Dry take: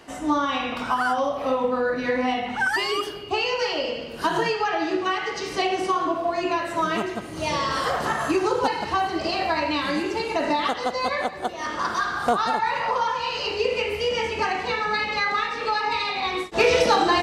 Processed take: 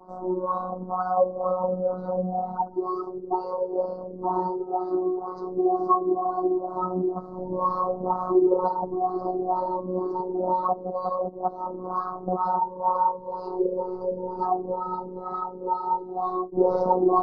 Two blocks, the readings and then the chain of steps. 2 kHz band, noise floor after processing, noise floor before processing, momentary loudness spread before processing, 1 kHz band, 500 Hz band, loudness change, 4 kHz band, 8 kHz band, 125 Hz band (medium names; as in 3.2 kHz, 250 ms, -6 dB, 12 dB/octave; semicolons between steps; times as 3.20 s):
under -25 dB, -39 dBFS, -35 dBFS, 4 LU, -1.5 dB, -0.5 dB, -3.0 dB, under -35 dB, under -35 dB, +0.5 dB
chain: LFO low-pass sine 2.1 Hz 340–1900 Hz; elliptic band-stop 1.1–4.6 kHz, stop band 40 dB; treble shelf 4 kHz -9.5 dB; vibrato 0.35 Hz 14 cents; robot voice 183 Hz